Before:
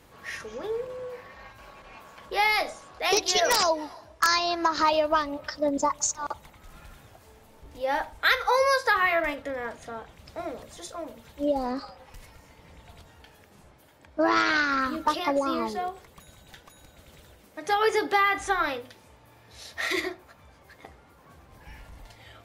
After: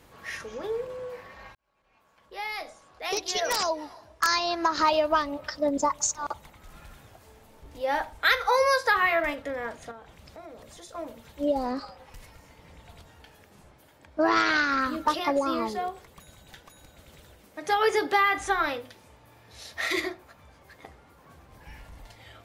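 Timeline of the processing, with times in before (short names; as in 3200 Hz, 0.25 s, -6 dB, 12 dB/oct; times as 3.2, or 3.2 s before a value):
1.55–4.87 fade in
9.91–10.95 compressor 2.5:1, threshold -45 dBFS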